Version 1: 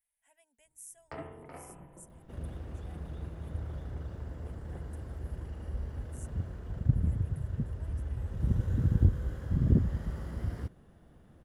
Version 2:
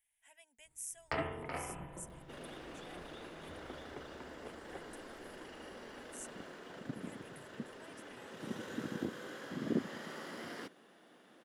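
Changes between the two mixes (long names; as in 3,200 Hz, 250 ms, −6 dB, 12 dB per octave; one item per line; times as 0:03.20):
first sound +3.5 dB
second sound: add high-pass filter 250 Hz 24 dB per octave
master: add parametric band 3,400 Hz +10.5 dB 2.8 octaves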